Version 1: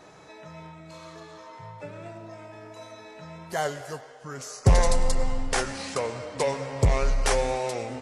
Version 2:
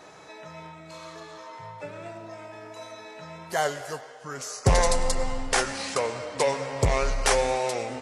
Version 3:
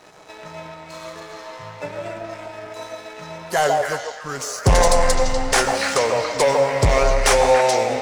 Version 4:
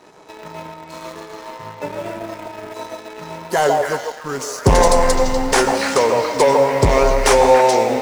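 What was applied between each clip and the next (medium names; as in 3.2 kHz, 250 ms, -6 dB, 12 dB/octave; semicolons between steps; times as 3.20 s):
bass shelf 290 Hz -7.5 dB; trim +3.5 dB
waveshaping leveller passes 2; repeats whose band climbs or falls 142 ms, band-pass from 670 Hz, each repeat 1.4 oct, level 0 dB
in parallel at -9.5 dB: bit crusher 5-bit; on the sum: small resonant body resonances 250/380/920 Hz, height 7 dB, ringing for 20 ms; trim -2.5 dB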